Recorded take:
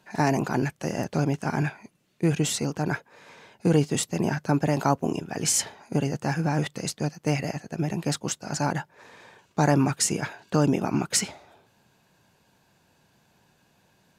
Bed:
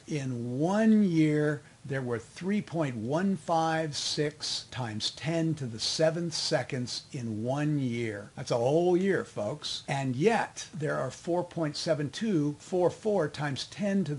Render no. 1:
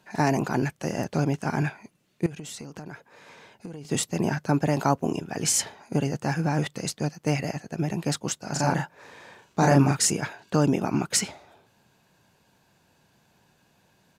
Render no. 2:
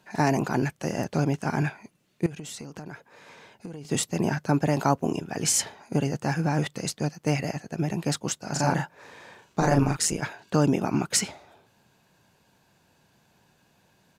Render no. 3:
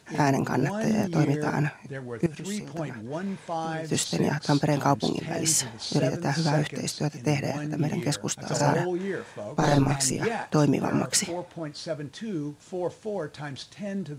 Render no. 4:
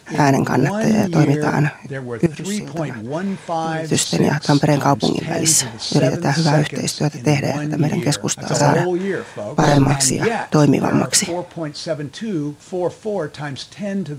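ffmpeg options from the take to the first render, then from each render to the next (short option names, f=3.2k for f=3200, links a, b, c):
-filter_complex "[0:a]asettb=1/sr,asplit=3[a][b][c];[a]atrim=end=2.264[d];[b]atrim=start=2.26:end=3.85,asetpts=PTS-STARTPTS,afade=t=in:d=0.004:c=qsin,afade=t=out:st=1.586:d=0.004:c=qsin,acompressor=threshold=-34dB:ratio=20:attack=3.2:release=140:knee=1:detection=peak[e];[c]atrim=start=3.846[f];[d][e]acrossfade=d=0.004:c1=hsin:c2=qsin[g];[g][f]acrossfade=d=0.004:c1=qsin:c2=hsin,asplit=3[h][i][j];[h]afade=t=out:st=8.54:d=0.02[k];[i]asplit=2[l][m];[m]adelay=36,volume=-2dB[n];[l][n]amix=inputs=2:normalize=0,afade=t=in:st=8.54:d=0.02,afade=t=out:st=10.09:d=0.02[o];[j]afade=t=in:st=10.09:d=0.02[p];[k][o][p]amix=inputs=3:normalize=0"
-filter_complex "[0:a]asettb=1/sr,asplit=3[a][b][c];[a]atrim=end=9.604[d];[b]atrim=start=9.6:end=10.22,asetpts=PTS-STARTPTS,afade=t=in:d=0.004:c=qsin,afade=t=out:st=0.616:d=0.004:c=qsin,tremolo=f=160:d=0.621[e];[c]atrim=start=10.216[f];[d][e]acrossfade=d=0.004:c1=hsin:c2=qsin[g];[g][f]acrossfade=d=0.004:c1=qsin:c2=hsin"
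-filter_complex "[1:a]volume=-4dB[a];[0:a][a]amix=inputs=2:normalize=0"
-af "volume=9dB,alimiter=limit=-1dB:level=0:latency=1"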